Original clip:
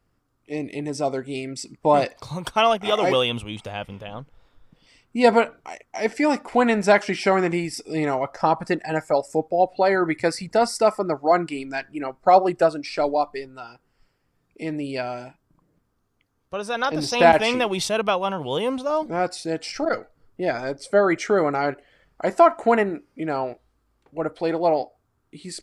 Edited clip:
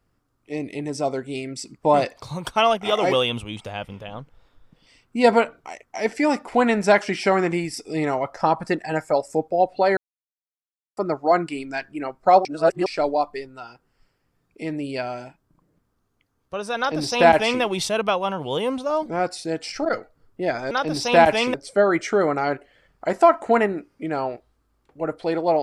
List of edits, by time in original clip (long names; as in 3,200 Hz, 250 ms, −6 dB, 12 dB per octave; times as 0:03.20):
0:09.97–0:10.97: silence
0:12.45–0:12.86: reverse
0:16.78–0:17.61: duplicate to 0:20.71